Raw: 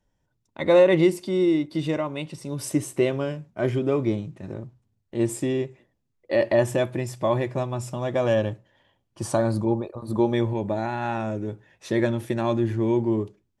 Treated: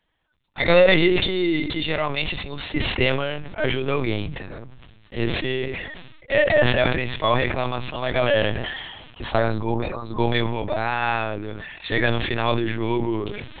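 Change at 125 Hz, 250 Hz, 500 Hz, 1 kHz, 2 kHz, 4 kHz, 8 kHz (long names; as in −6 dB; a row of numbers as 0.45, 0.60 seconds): +1.0 dB, −1.5 dB, +1.0 dB, +5.5 dB, +11.0 dB, +13.0 dB, below −35 dB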